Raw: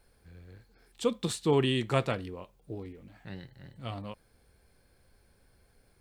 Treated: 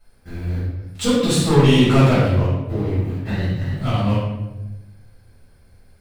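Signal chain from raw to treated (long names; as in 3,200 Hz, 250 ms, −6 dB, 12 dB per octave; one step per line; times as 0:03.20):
parametric band 93 Hz +9.5 dB 0.32 octaves
leveller curve on the samples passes 3
downward compressor 1.5 to 1, threshold −45 dBFS, peak gain reduction 10.5 dB
convolution reverb RT60 1.0 s, pre-delay 5 ms, DRR −11 dB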